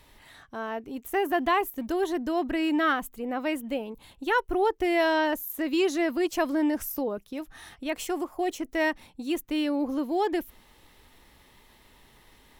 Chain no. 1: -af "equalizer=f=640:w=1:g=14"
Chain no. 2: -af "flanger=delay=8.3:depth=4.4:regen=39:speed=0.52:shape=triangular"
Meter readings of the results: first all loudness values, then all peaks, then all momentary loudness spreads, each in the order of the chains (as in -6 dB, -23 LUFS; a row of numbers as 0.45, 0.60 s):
-19.5, -32.0 LUFS; -4.5, -14.5 dBFS; 12, 12 LU